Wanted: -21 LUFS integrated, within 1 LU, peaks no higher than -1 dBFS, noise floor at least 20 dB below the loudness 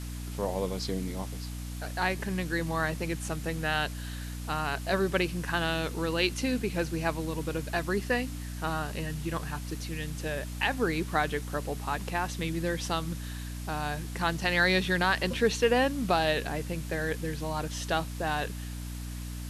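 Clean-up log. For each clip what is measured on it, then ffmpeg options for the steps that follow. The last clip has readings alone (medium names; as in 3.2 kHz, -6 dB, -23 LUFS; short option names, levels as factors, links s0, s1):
hum 60 Hz; highest harmonic 300 Hz; hum level -35 dBFS; noise floor -38 dBFS; noise floor target -51 dBFS; loudness -30.5 LUFS; peak level -12.5 dBFS; loudness target -21.0 LUFS
-> -af "bandreject=f=60:t=h:w=4,bandreject=f=120:t=h:w=4,bandreject=f=180:t=h:w=4,bandreject=f=240:t=h:w=4,bandreject=f=300:t=h:w=4"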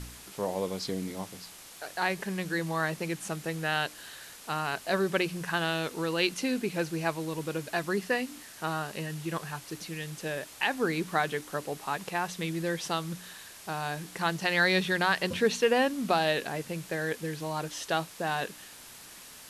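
hum not found; noise floor -49 dBFS; noise floor target -51 dBFS
-> -af "afftdn=nr=6:nf=-49"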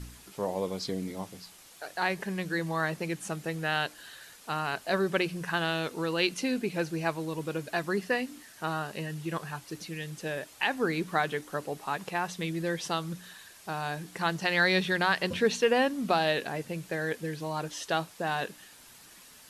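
noise floor -53 dBFS; loudness -31.0 LUFS; peak level -12.5 dBFS; loudness target -21.0 LUFS
-> -af "volume=3.16"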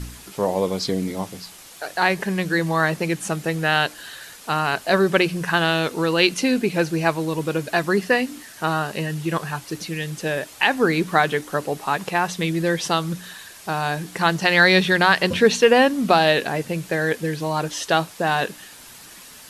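loudness -21.0 LUFS; peak level -2.5 dBFS; noise floor -43 dBFS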